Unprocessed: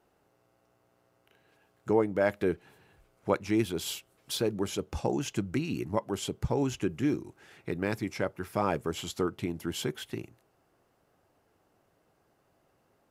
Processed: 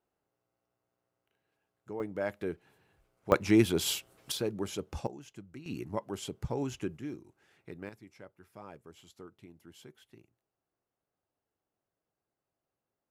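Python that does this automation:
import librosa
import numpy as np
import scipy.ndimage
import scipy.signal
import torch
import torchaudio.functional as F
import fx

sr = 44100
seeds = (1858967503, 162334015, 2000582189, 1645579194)

y = fx.gain(x, sr, db=fx.steps((0.0, -15.0), (2.0, -7.5), (3.32, 4.0), (4.32, -4.0), (5.07, -17.0), (5.66, -5.5), (6.97, -12.0), (7.89, -20.0)))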